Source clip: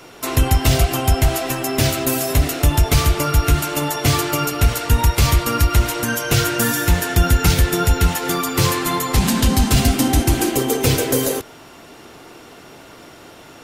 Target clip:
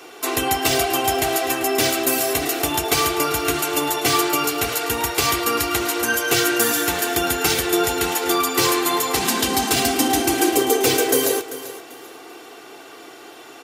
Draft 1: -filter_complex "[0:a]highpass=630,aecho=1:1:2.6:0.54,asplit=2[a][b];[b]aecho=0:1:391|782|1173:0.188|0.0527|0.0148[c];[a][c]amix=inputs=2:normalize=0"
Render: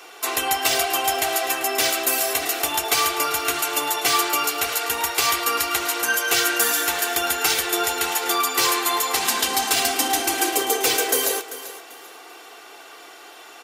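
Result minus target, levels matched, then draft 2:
250 Hz band -9.0 dB
-filter_complex "[0:a]highpass=280,aecho=1:1:2.6:0.54,asplit=2[a][b];[b]aecho=0:1:391|782|1173:0.188|0.0527|0.0148[c];[a][c]amix=inputs=2:normalize=0"

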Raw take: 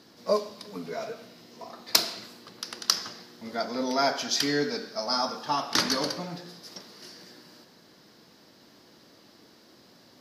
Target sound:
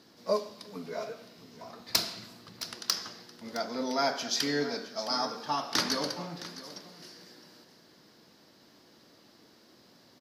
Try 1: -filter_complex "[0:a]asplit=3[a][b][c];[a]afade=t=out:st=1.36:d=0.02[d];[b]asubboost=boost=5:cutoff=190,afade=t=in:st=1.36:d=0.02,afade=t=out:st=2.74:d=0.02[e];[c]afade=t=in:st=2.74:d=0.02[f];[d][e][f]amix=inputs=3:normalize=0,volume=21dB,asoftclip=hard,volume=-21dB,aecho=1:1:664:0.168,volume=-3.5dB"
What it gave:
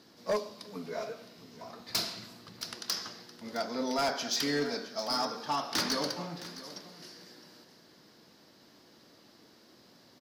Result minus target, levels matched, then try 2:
overloaded stage: distortion +8 dB
-filter_complex "[0:a]asplit=3[a][b][c];[a]afade=t=out:st=1.36:d=0.02[d];[b]asubboost=boost=5:cutoff=190,afade=t=in:st=1.36:d=0.02,afade=t=out:st=2.74:d=0.02[e];[c]afade=t=in:st=2.74:d=0.02[f];[d][e][f]amix=inputs=3:normalize=0,volume=11.5dB,asoftclip=hard,volume=-11.5dB,aecho=1:1:664:0.168,volume=-3.5dB"

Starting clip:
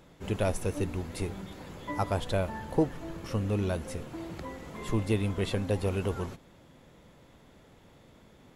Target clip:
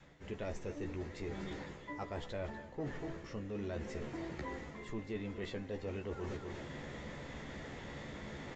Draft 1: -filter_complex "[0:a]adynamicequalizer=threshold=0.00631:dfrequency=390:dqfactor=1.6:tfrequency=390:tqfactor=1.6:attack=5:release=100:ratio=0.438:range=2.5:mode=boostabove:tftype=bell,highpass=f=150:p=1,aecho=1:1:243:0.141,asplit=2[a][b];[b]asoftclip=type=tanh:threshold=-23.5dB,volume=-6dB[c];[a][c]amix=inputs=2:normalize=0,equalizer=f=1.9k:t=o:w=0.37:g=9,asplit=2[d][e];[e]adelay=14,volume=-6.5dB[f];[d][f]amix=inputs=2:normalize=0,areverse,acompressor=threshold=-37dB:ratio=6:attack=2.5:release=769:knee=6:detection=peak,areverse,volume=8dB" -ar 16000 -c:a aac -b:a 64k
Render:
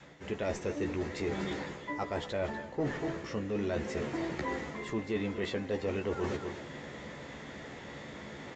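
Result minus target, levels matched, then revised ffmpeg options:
compressor: peak gain reduction -8.5 dB; 125 Hz band -3.5 dB
-filter_complex "[0:a]adynamicequalizer=threshold=0.00631:dfrequency=390:dqfactor=1.6:tfrequency=390:tqfactor=1.6:attack=5:release=100:ratio=0.438:range=2.5:mode=boostabove:tftype=bell,aecho=1:1:243:0.141,asplit=2[a][b];[b]asoftclip=type=tanh:threshold=-23.5dB,volume=-6dB[c];[a][c]amix=inputs=2:normalize=0,equalizer=f=1.9k:t=o:w=0.37:g=9,asplit=2[d][e];[e]adelay=14,volume=-6.5dB[f];[d][f]amix=inputs=2:normalize=0,areverse,acompressor=threshold=-46.5dB:ratio=6:attack=2.5:release=769:knee=6:detection=peak,areverse,volume=8dB" -ar 16000 -c:a aac -b:a 64k

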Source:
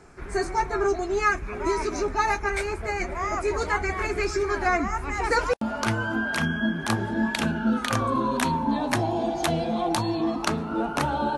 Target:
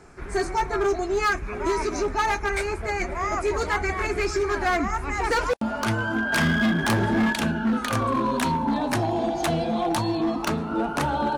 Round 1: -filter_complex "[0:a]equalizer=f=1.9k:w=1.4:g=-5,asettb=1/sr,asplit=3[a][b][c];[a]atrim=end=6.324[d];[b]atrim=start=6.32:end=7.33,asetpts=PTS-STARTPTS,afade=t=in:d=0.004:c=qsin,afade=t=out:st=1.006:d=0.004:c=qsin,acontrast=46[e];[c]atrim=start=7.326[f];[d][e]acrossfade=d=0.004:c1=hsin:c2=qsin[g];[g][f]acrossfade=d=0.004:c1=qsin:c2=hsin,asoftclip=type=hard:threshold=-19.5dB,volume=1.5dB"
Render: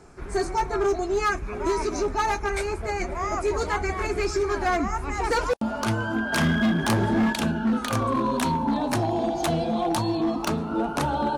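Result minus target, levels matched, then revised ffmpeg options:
2000 Hz band -3.0 dB
-filter_complex "[0:a]asettb=1/sr,asplit=3[a][b][c];[a]atrim=end=6.324[d];[b]atrim=start=6.32:end=7.33,asetpts=PTS-STARTPTS,afade=t=in:d=0.004:c=qsin,afade=t=out:st=1.006:d=0.004:c=qsin,acontrast=46[e];[c]atrim=start=7.326[f];[d][e]acrossfade=d=0.004:c1=hsin:c2=qsin[g];[g][f]acrossfade=d=0.004:c1=qsin:c2=hsin,asoftclip=type=hard:threshold=-19.5dB,volume=1.5dB"

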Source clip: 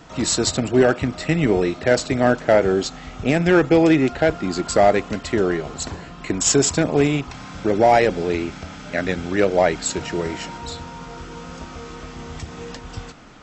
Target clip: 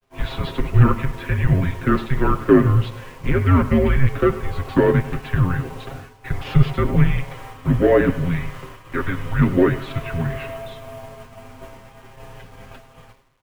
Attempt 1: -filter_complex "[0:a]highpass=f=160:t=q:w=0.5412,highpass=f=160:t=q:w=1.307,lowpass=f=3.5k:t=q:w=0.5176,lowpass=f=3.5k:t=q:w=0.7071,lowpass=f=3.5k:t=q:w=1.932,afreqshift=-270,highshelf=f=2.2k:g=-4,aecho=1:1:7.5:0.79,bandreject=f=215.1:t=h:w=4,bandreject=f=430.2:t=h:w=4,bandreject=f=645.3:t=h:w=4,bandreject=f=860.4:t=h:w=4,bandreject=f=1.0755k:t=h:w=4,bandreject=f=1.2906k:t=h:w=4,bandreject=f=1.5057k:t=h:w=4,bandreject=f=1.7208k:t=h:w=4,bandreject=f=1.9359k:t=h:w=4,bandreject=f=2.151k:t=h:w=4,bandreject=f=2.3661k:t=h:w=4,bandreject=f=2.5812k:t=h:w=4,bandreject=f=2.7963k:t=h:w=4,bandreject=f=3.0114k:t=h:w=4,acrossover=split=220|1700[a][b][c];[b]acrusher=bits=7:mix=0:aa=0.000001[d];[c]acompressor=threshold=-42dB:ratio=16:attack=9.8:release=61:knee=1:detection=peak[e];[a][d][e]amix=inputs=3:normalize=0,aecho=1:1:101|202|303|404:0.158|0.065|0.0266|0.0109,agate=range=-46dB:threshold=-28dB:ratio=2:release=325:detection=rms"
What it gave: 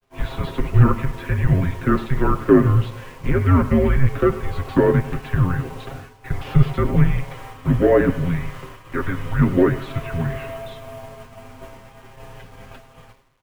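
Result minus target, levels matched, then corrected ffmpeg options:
compressor: peak gain reduction +6.5 dB
-filter_complex "[0:a]highpass=f=160:t=q:w=0.5412,highpass=f=160:t=q:w=1.307,lowpass=f=3.5k:t=q:w=0.5176,lowpass=f=3.5k:t=q:w=0.7071,lowpass=f=3.5k:t=q:w=1.932,afreqshift=-270,highshelf=f=2.2k:g=-4,aecho=1:1:7.5:0.79,bandreject=f=215.1:t=h:w=4,bandreject=f=430.2:t=h:w=4,bandreject=f=645.3:t=h:w=4,bandreject=f=860.4:t=h:w=4,bandreject=f=1.0755k:t=h:w=4,bandreject=f=1.2906k:t=h:w=4,bandreject=f=1.5057k:t=h:w=4,bandreject=f=1.7208k:t=h:w=4,bandreject=f=1.9359k:t=h:w=4,bandreject=f=2.151k:t=h:w=4,bandreject=f=2.3661k:t=h:w=4,bandreject=f=2.5812k:t=h:w=4,bandreject=f=2.7963k:t=h:w=4,bandreject=f=3.0114k:t=h:w=4,acrossover=split=220|1700[a][b][c];[b]acrusher=bits=7:mix=0:aa=0.000001[d];[c]acompressor=threshold=-35dB:ratio=16:attack=9.8:release=61:knee=1:detection=peak[e];[a][d][e]amix=inputs=3:normalize=0,aecho=1:1:101|202|303|404:0.158|0.065|0.0266|0.0109,agate=range=-46dB:threshold=-28dB:ratio=2:release=325:detection=rms"

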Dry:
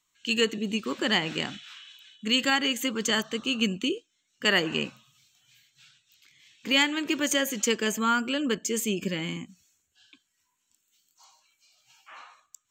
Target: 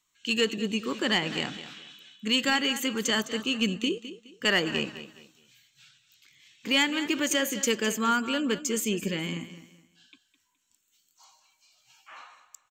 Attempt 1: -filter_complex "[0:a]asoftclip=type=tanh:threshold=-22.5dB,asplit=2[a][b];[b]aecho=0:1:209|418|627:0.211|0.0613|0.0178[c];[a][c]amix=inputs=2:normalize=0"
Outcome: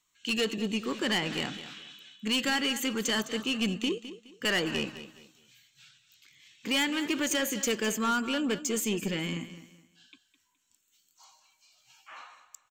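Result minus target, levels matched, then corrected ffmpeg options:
soft clip: distortion +12 dB
-filter_complex "[0:a]asoftclip=type=tanh:threshold=-13dB,asplit=2[a][b];[b]aecho=0:1:209|418|627:0.211|0.0613|0.0178[c];[a][c]amix=inputs=2:normalize=0"

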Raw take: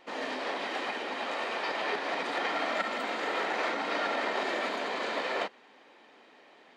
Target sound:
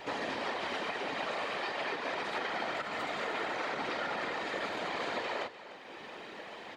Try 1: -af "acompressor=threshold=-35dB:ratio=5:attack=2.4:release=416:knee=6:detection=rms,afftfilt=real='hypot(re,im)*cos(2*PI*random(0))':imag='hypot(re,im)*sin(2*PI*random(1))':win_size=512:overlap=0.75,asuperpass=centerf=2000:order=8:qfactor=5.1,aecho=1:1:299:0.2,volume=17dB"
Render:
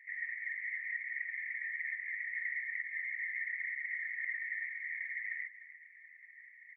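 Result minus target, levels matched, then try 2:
compressor: peak gain reduction -6.5 dB; 2000 Hz band +4.0 dB
-af "acompressor=threshold=-43dB:ratio=5:attack=2.4:release=416:knee=6:detection=rms,afftfilt=real='hypot(re,im)*cos(2*PI*random(0))':imag='hypot(re,im)*sin(2*PI*random(1))':win_size=512:overlap=0.75,aecho=1:1:299:0.2,volume=17dB"

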